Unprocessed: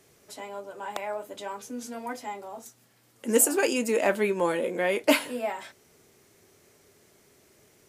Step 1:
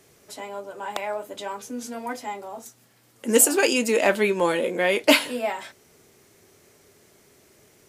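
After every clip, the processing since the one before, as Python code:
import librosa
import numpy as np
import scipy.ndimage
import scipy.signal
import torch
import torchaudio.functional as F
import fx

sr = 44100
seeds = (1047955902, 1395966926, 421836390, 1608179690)

y = fx.dynamic_eq(x, sr, hz=3800.0, q=0.94, threshold_db=-44.0, ratio=4.0, max_db=6)
y = y * 10.0 ** (3.5 / 20.0)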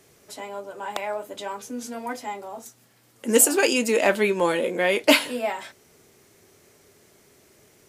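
y = x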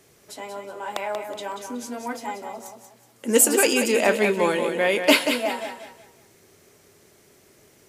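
y = fx.echo_feedback(x, sr, ms=185, feedback_pct=33, wet_db=-7.5)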